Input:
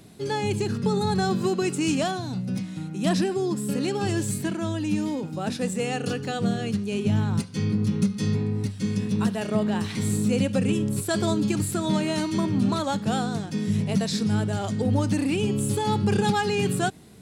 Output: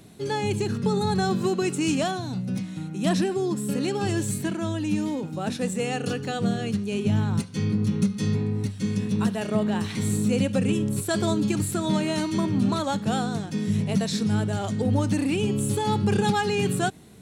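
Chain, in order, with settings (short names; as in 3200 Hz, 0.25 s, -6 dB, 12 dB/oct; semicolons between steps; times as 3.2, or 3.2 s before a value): notch 4900 Hz, Q 13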